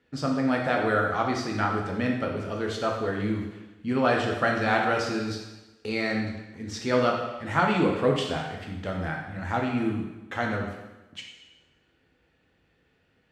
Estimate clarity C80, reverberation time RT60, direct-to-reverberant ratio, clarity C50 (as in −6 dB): 6.0 dB, 1.1 s, 0.0 dB, 3.5 dB